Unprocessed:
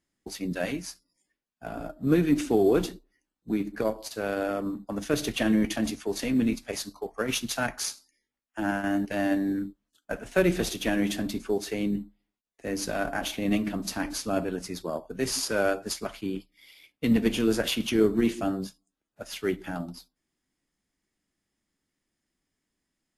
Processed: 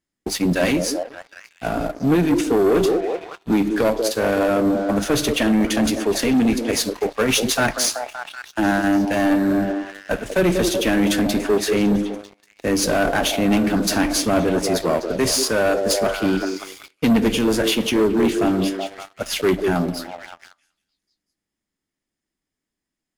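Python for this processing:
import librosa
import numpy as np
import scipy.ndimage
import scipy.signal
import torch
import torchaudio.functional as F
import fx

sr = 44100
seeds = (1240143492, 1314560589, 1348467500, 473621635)

y = fx.echo_stepped(x, sr, ms=189, hz=410.0, octaves=0.7, feedback_pct=70, wet_db=-5.5)
y = fx.rider(y, sr, range_db=3, speed_s=0.5)
y = fx.leveller(y, sr, passes=3)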